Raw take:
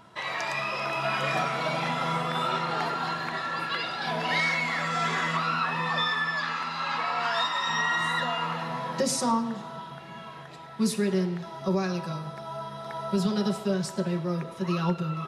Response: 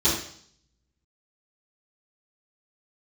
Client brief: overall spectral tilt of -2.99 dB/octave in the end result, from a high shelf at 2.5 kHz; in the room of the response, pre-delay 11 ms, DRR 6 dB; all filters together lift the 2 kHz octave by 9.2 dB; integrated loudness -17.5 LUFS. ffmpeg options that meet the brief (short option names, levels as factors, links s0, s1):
-filter_complex "[0:a]equalizer=f=2000:t=o:g=8.5,highshelf=f=2500:g=5,asplit=2[s0][s1];[1:a]atrim=start_sample=2205,adelay=11[s2];[s1][s2]afir=irnorm=-1:irlink=0,volume=0.1[s3];[s0][s3]amix=inputs=2:normalize=0,volume=1.5"